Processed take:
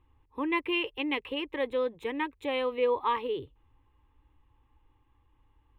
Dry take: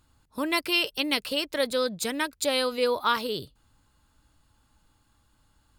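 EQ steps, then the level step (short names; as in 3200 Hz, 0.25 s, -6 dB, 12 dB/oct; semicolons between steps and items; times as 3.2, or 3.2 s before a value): air absorption 400 m; fixed phaser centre 960 Hz, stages 8; +2.0 dB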